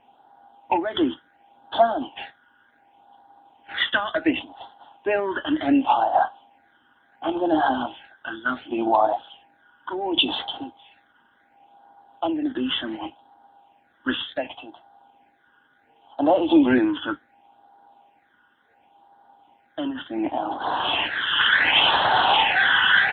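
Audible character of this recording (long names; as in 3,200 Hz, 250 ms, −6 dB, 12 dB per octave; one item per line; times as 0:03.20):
phaser sweep stages 12, 0.69 Hz, lowest notch 730–2,400 Hz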